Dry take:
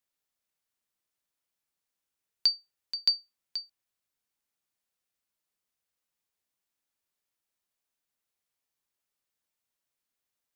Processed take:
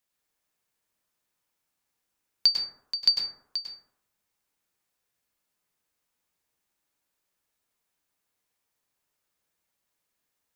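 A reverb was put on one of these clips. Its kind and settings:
dense smooth reverb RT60 0.73 s, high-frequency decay 0.3×, pre-delay 90 ms, DRR −1.5 dB
level +3.5 dB

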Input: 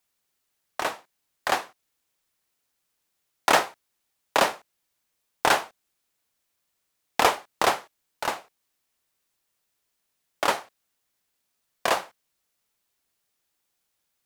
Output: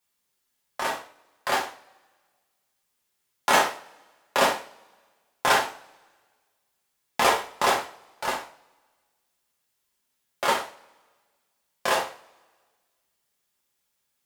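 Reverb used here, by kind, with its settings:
coupled-rooms reverb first 0.37 s, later 1.6 s, from −27 dB, DRR −3.5 dB
level −4.5 dB

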